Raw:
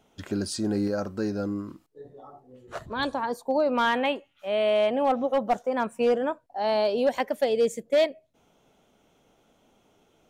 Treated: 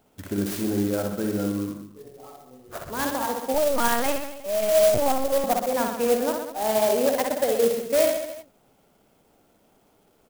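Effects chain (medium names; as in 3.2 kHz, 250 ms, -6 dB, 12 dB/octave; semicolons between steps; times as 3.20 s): reverse bouncing-ball echo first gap 60 ms, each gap 1.1×, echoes 5; 3.54–5.44 s: LPC vocoder at 8 kHz pitch kept; sampling jitter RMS 0.065 ms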